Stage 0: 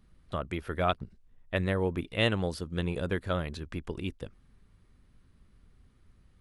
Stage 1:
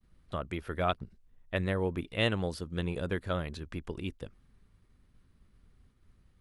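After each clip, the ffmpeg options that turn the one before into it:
-af "agate=range=-33dB:threshold=-58dB:ratio=3:detection=peak,volume=-2dB"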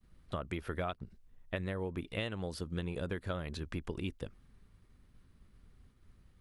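-af "acompressor=threshold=-34dB:ratio=16,volume=1.5dB"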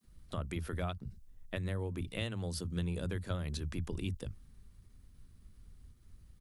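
-filter_complex "[0:a]bass=f=250:g=9,treble=f=4k:g=11,acrossover=split=160[a][b];[a]adelay=40[c];[c][b]amix=inputs=2:normalize=0,volume=-3.5dB"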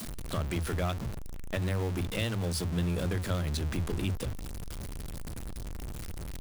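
-af "aeval=exprs='val(0)+0.5*0.0158*sgn(val(0))':c=same,volume=3dB"

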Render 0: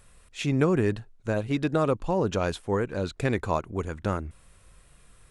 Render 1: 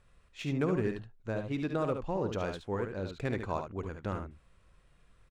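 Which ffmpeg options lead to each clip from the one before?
-af "adynamicsmooth=sensitivity=4:basefreq=5.1k,aecho=1:1:54|72:0.188|0.447,volume=-8dB"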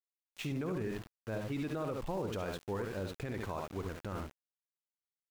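-af "aeval=exprs='val(0)*gte(abs(val(0)),0.00631)':c=same,alimiter=level_in=4.5dB:limit=-24dB:level=0:latency=1:release=36,volume=-4.5dB"

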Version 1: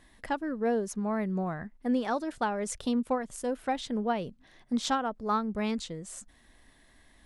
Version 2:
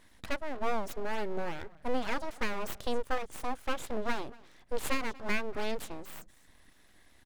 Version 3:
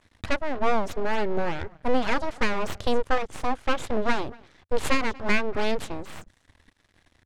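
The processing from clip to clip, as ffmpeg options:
-af "aecho=1:1:236:0.0708,aeval=exprs='abs(val(0))':c=same"
-af "aeval=exprs='sgn(val(0))*max(abs(val(0))-0.00141,0)':c=same,equalizer=f=88:t=o:w=0.77:g=8,adynamicsmooth=sensitivity=8:basefreq=7.5k,volume=8.5dB"

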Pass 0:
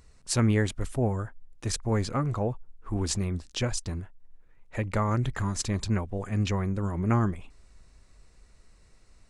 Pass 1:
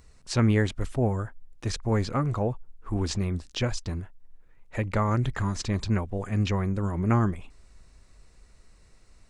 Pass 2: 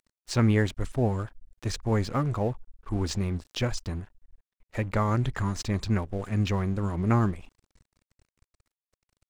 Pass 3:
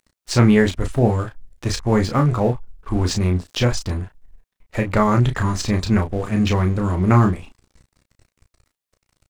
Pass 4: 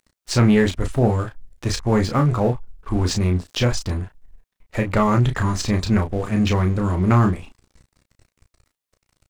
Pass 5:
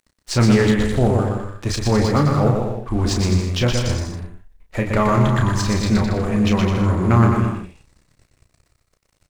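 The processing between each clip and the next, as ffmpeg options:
-filter_complex "[0:a]acrossover=split=6100[a][b];[b]acompressor=threshold=-55dB:ratio=4:attack=1:release=60[c];[a][c]amix=inputs=2:normalize=0,volume=1.5dB"
-af "aeval=exprs='sgn(val(0))*max(abs(val(0))-0.00447,0)':c=same"
-af "aecho=1:1:14|33:0.237|0.501,volume=8dB"
-af "asoftclip=type=tanh:threshold=-6.5dB"
-af "aecho=1:1:120|210|277.5|328.1|366.1:0.631|0.398|0.251|0.158|0.1"

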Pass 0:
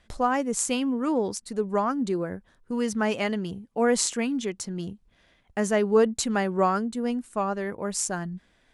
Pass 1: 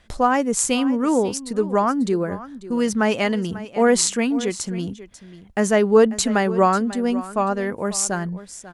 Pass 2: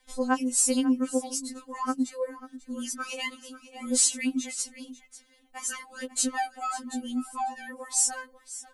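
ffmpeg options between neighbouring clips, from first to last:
-af "aecho=1:1:542:0.158,volume=6dB"
-af "crystalizer=i=2.5:c=0,afftfilt=real='re*3.46*eq(mod(b,12),0)':imag='im*3.46*eq(mod(b,12),0)':win_size=2048:overlap=0.75,volume=-9dB"

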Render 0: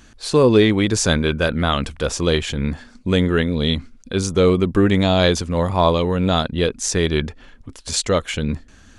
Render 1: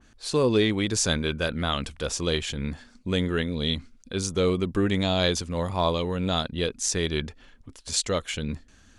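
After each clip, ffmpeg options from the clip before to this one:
-af "adynamicequalizer=threshold=0.0178:dfrequency=2400:dqfactor=0.7:tfrequency=2400:tqfactor=0.7:attack=5:release=100:ratio=0.375:range=2.5:mode=boostabove:tftype=highshelf,volume=-8.5dB"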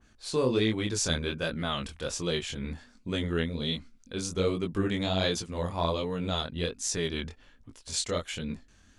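-af "flanger=delay=17.5:depth=7.1:speed=1.3,volume=-1.5dB"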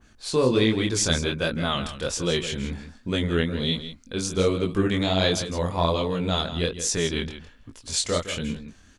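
-af "aecho=1:1:162:0.266,volume=5.5dB"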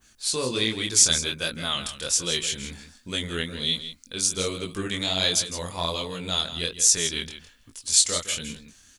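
-af "crystalizer=i=7.5:c=0,volume=-9dB"

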